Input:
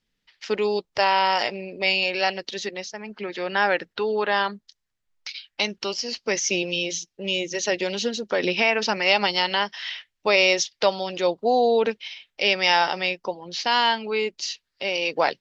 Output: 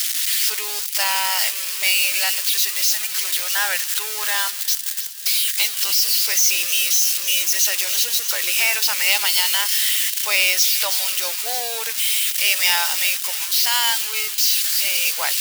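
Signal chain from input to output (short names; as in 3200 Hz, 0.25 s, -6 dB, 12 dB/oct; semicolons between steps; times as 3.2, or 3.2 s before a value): switching spikes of -12.5 dBFS; HPF 1300 Hz 12 dB/oct; thin delay 0.315 s, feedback 73%, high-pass 2900 Hz, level -11.5 dB; gain +1.5 dB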